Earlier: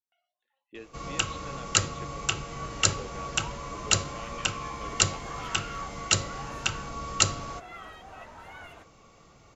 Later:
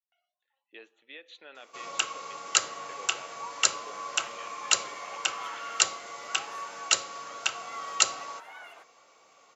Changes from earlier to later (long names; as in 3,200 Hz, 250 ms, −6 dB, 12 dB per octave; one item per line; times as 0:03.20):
first sound: entry +0.80 s
master: add high-pass filter 580 Hz 12 dB per octave